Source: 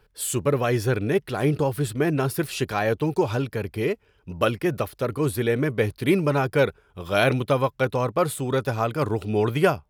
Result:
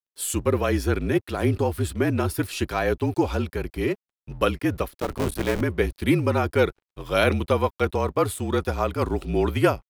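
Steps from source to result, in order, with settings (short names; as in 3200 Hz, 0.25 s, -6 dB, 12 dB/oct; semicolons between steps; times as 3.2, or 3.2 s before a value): 4.91–5.61 cycle switcher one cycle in 3, muted; frequency shift -41 Hz; crossover distortion -51.5 dBFS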